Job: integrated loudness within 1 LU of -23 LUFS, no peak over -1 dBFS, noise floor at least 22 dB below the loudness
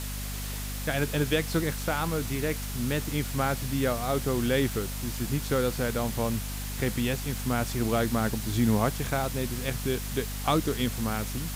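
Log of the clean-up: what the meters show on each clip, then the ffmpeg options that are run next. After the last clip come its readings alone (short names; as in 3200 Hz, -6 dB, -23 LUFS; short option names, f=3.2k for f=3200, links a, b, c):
hum 50 Hz; harmonics up to 250 Hz; hum level -33 dBFS; noise floor -34 dBFS; noise floor target -51 dBFS; loudness -29.0 LUFS; peak -12.0 dBFS; loudness target -23.0 LUFS
-> -af "bandreject=f=50:t=h:w=6,bandreject=f=100:t=h:w=6,bandreject=f=150:t=h:w=6,bandreject=f=200:t=h:w=6,bandreject=f=250:t=h:w=6"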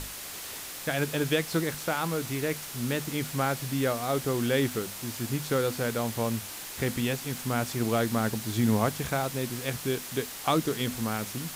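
hum none; noise floor -40 dBFS; noise floor target -52 dBFS
-> -af "afftdn=nr=12:nf=-40"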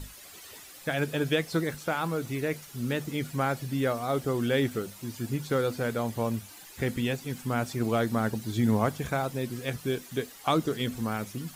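noise floor -49 dBFS; noise floor target -52 dBFS
-> -af "afftdn=nr=6:nf=-49"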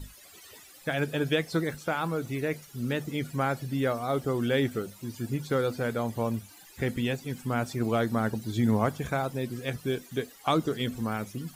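noise floor -52 dBFS; loudness -30.0 LUFS; peak -13.0 dBFS; loudness target -23.0 LUFS
-> -af "volume=7dB"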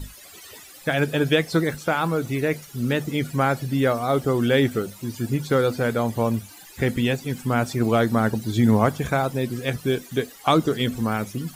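loudness -23.0 LUFS; peak -6.0 dBFS; noise floor -45 dBFS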